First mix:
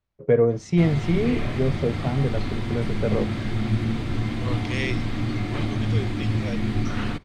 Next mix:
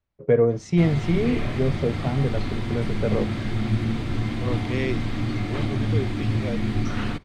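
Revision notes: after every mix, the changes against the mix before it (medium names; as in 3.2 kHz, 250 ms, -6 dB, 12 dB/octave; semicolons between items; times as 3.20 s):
second voice: add tilt EQ -3.5 dB/octave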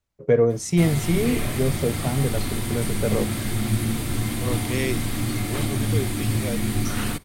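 master: remove distance through air 180 m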